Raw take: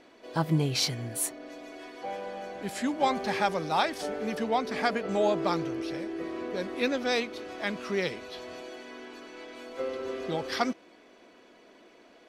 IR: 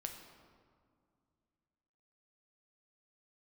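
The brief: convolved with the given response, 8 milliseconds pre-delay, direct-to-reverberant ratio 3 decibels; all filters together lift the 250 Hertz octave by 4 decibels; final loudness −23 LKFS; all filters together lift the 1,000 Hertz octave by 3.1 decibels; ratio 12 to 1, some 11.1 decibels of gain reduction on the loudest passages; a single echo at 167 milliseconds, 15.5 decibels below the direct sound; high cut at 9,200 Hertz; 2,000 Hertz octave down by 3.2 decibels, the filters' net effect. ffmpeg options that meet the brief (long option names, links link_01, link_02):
-filter_complex "[0:a]lowpass=9200,equalizer=frequency=250:width_type=o:gain=5,equalizer=frequency=1000:width_type=o:gain=5,equalizer=frequency=2000:width_type=o:gain=-6,acompressor=threshold=-29dB:ratio=12,aecho=1:1:167:0.168,asplit=2[link_01][link_02];[1:a]atrim=start_sample=2205,adelay=8[link_03];[link_02][link_03]afir=irnorm=-1:irlink=0,volume=-1dB[link_04];[link_01][link_04]amix=inputs=2:normalize=0,volume=10dB"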